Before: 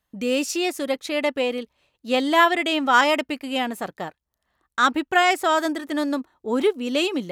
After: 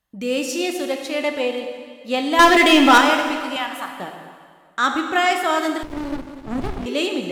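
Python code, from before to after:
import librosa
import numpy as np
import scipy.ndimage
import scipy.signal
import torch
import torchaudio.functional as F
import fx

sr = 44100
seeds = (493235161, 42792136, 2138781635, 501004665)

y = fx.leveller(x, sr, passes=3, at=(2.39, 2.98))
y = fx.low_shelf_res(y, sr, hz=710.0, db=-12.5, q=3.0, at=(3.56, 3.99))
y = fx.rev_plate(y, sr, seeds[0], rt60_s=1.9, hf_ratio=0.9, predelay_ms=0, drr_db=3.5)
y = fx.running_max(y, sr, window=65, at=(5.83, 6.86))
y = F.gain(torch.from_numpy(y), -1.0).numpy()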